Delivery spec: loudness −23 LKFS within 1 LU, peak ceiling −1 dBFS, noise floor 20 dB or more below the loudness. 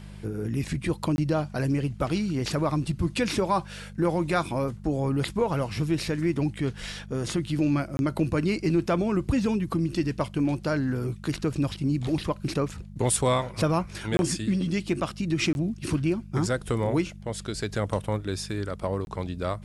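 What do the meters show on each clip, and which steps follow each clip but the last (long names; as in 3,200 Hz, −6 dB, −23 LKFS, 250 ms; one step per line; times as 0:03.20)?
number of dropouts 5; longest dropout 21 ms; mains hum 50 Hz; hum harmonics up to 200 Hz; level of the hum −41 dBFS; integrated loudness −27.5 LKFS; sample peak −10.5 dBFS; target loudness −23.0 LKFS
→ repair the gap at 0:01.16/0:07.97/0:14.17/0:15.53/0:19.05, 21 ms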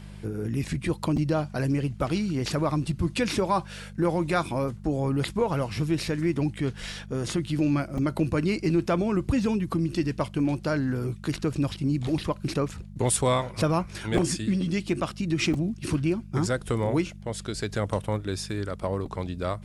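number of dropouts 0; mains hum 50 Hz; hum harmonics up to 200 Hz; level of the hum −41 dBFS
→ hum removal 50 Hz, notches 4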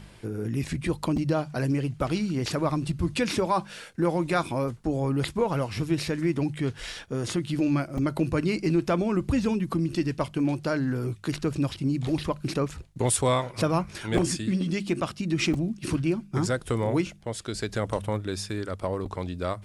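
mains hum none found; integrated loudness −28.0 LKFS; sample peak −10.5 dBFS; target loudness −23.0 LKFS
→ level +5 dB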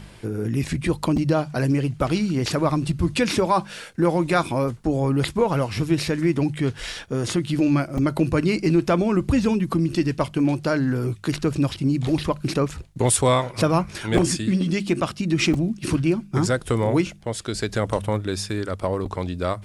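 integrated loudness −23.0 LKFS; sample peak −5.5 dBFS; background noise floor −43 dBFS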